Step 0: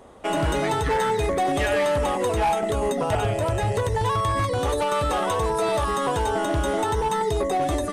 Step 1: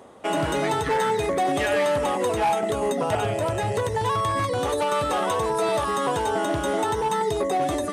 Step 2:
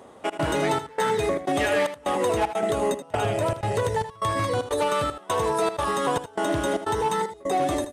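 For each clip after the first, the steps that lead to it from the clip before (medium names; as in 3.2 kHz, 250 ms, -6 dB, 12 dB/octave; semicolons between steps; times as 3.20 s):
reverse; upward compressor, threshold -34 dBFS; reverse; high-pass 120 Hz 12 dB/octave
trance gate "xxx.xxxx..x" 153 bpm -24 dB; delay 79 ms -11.5 dB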